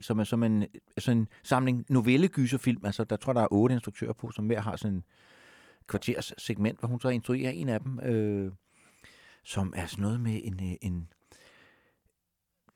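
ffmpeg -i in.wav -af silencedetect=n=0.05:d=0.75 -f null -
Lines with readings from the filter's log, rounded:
silence_start: 4.98
silence_end: 5.94 | silence_duration: 0.96
silence_start: 8.45
silence_end: 9.57 | silence_duration: 1.11
silence_start: 10.92
silence_end: 12.75 | silence_duration: 1.84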